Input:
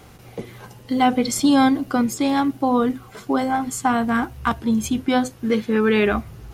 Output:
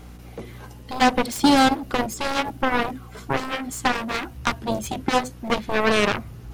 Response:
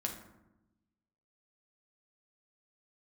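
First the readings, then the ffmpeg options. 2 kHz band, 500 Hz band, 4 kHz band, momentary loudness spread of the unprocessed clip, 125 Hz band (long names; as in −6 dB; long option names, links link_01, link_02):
+2.0 dB, −2.0 dB, +3.5 dB, 10 LU, −1.0 dB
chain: -af "aeval=exprs='val(0)+0.01*(sin(2*PI*60*n/s)+sin(2*PI*2*60*n/s)/2+sin(2*PI*3*60*n/s)/3+sin(2*PI*4*60*n/s)/4+sin(2*PI*5*60*n/s)/5)':channel_layout=same,aeval=exprs='0.531*(cos(1*acos(clip(val(0)/0.531,-1,1)))-cos(1*PI/2))+0.15*(cos(7*acos(clip(val(0)/0.531,-1,1)))-cos(7*PI/2))':channel_layout=same,volume=-1.5dB"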